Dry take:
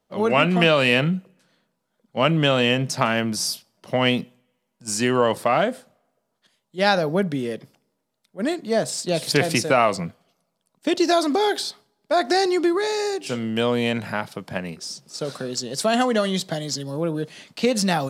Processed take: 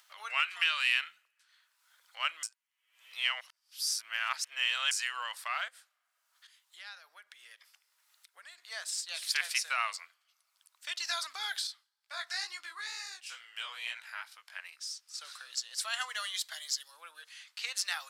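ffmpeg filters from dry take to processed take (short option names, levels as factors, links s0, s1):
-filter_complex "[0:a]asettb=1/sr,asplit=3[s0][s1][s2];[s0]atrim=end=0.404[s3];[s1]atrim=start=0.4:end=1.16,asetpts=PTS-STARTPTS,afade=t=in:d=0.004:c=qsin,afade=t=out:st=0.756:d=0.004:c=qsin,equalizer=f=640:w=1.5:g=-7.5[s4];[s2]atrim=start=1.156[s5];[s3][s4]acrossfade=d=0.004:c1=hsin:c2=qsin[s6];[s6][s5]acrossfade=d=0.004:c1=qsin:c2=hsin,asettb=1/sr,asplit=3[s7][s8][s9];[s7]atrim=end=5.684[s10];[s8]atrim=start=5.68:end=8.58,asetpts=PTS-STARTPTS,afade=t=in:d=0.004:c=qsin,afade=t=out:st=2.896:d=0.004:c=qsin,acompressor=threshold=0.0178:ratio=3:attack=3.2:release=140:knee=1:detection=peak[s11];[s9]atrim=start=8.576[s12];[s10][s11]acrossfade=d=0.004:c1=hsin:c2=qsin[s13];[s13][s12]acrossfade=d=0.004:c1=qsin:c2=hsin,asettb=1/sr,asplit=3[s14][s15][s16];[s14]atrim=end=11.674[s17];[s15]atrim=start=11.67:end=14.61,asetpts=PTS-STARTPTS,afade=t=in:d=0.004:c=qsin,afade=t=out:st=2.936:d=0.004:c=qsin,flanger=delay=15.5:depth=6.9:speed=2.2[s18];[s16]atrim=start=14.606[s19];[s17][s18]acrossfade=d=0.004:c1=hsin:c2=qsin[s20];[s20][s19]acrossfade=d=0.004:c1=qsin:c2=hsin,asettb=1/sr,asplit=3[s21][s22][s23];[s21]atrim=end=16.094[s24];[s22]atrim=start=16.09:end=16.88,asetpts=PTS-STARTPTS,afade=t=in:d=0.004:c=qsin,afade=t=out:st=0.786:d=0.004:c=qsin,highshelf=f=10000:g=9.5[s25];[s23]atrim=start=16.876[s26];[s24][s25]acrossfade=d=0.004:c1=hsin:c2=qsin[s27];[s27][s26]acrossfade=d=0.004:c1=qsin:c2=hsin,asplit=3[s28][s29][s30];[s28]atrim=end=2.432[s31];[s29]atrim=start=2.428:end=4.912,asetpts=PTS-STARTPTS,areverse[s32];[s30]atrim=start=4.908[s33];[s31][s32]acrossfade=d=0.004:c1=hsin:c2=hsin[s34];[s34][s33]acrossfade=d=0.004:c1=hsin:c2=hsin,highpass=f=1300:w=0.5412,highpass=f=1300:w=1.3066,acompressor=mode=upward:threshold=0.00891:ratio=2.5,volume=0.447"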